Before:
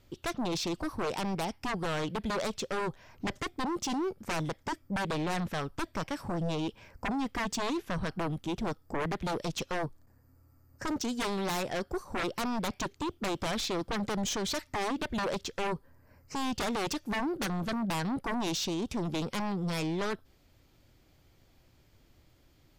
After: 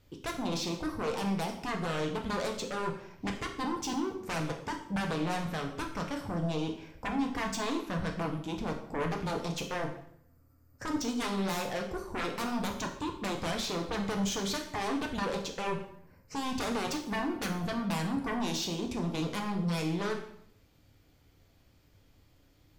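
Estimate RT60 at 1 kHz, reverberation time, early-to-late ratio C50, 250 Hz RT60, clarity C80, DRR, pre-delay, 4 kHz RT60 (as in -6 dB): 0.65 s, 0.65 s, 8.0 dB, 0.75 s, 11.0 dB, 1.5 dB, 3 ms, 0.60 s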